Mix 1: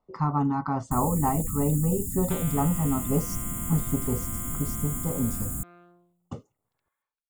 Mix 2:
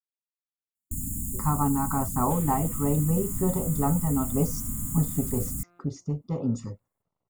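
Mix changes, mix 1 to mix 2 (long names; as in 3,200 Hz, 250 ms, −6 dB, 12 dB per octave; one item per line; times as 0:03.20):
speech: entry +1.25 s
second sound −11.5 dB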